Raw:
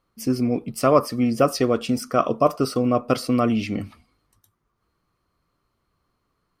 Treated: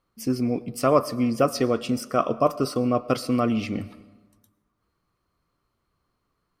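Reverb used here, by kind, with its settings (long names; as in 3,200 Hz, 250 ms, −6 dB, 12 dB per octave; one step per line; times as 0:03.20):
comb and all-pass reverb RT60 1.3 s, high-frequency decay 0.6×, pre-delay 70 ms, DRR 18.5 dB
level −2.5 dB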